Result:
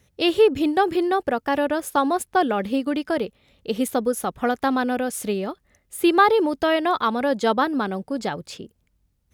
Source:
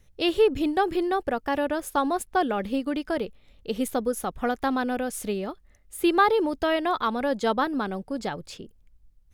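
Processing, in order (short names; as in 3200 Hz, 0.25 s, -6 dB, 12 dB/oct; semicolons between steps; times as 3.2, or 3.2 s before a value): HPF 86 Hz 12 dB/oct; gain +4 dB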